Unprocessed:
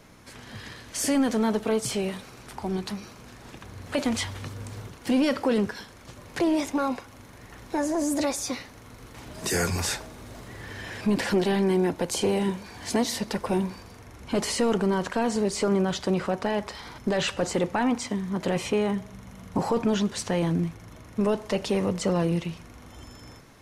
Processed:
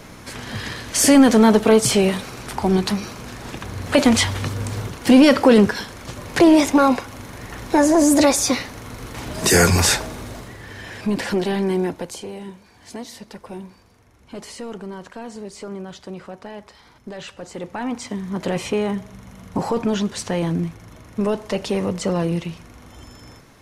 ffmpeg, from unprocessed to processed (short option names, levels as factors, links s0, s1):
-af "volume=15,afade=t=out:st=10.12:d=0.46:silence=0.334965,afade=t=out:st=11.82:d=0.42:silence=0.281838,afade=t=in:st=17.49:d=0.9:silence=0.251189"